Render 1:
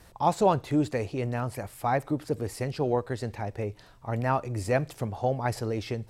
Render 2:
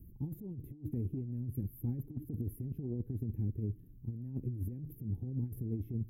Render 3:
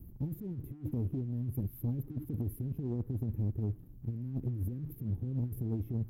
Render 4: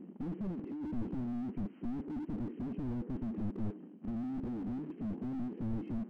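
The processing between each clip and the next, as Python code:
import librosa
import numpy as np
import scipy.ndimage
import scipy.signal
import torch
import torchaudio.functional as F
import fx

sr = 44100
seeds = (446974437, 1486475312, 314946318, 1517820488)

y1 = scipy.signal.sosfilt(scipy.signal.cheby2(4, 40, [590.0, 8500.0], 'bandstop', fs=sr, output='sos'), x)
y1 = fx.over_compress(y1, sr, threshold_db=-35.0, ratio=-0.5)
y1 = F.gain(torch.from_numpy(y1), -1.0).numpy()
y2 = fx.leveller(y1, sr, passes=1)
y3 = fx.brickwall_bandpass(y2, sr, low_hz=180.0, high_hz=3200.0)
y3 = fx.slew_limit(y3, sr, full_power_hz=1.0)
y3 = F.gain(torch.from_numpy(y3), 11.5).numpy()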